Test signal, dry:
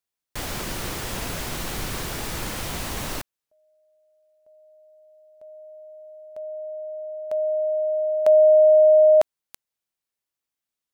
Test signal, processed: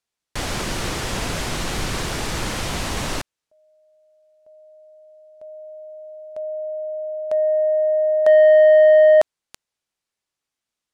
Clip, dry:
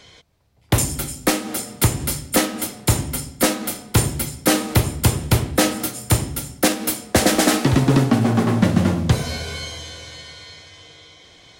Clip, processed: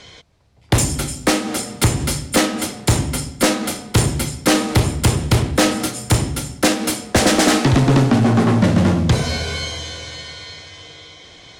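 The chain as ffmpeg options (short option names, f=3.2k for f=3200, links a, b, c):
-af "lowpass=8.7k,asoftclip=type=tanh:threshold=-13dB,volume=5.5dB"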